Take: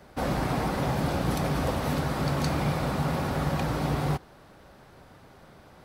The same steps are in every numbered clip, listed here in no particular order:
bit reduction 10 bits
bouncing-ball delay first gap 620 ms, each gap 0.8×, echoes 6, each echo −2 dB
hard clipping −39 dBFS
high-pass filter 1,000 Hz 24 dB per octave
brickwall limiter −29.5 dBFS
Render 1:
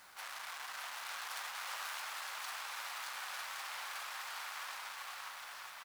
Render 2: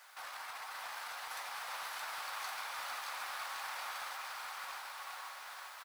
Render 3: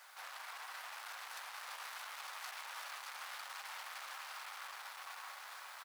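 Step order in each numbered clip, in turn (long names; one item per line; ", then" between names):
hard clipping, then bouncing-ball delay, then brickwall limiter, then high-pass filter, then bit reduction
brickwall limiter, then bit reduction, then high-pass filter, then hard clipping, then bouncing-ball delay
brickwall limiter, then bit reduction, then bouncing-ball delay, then hard clipping, then high-pass filter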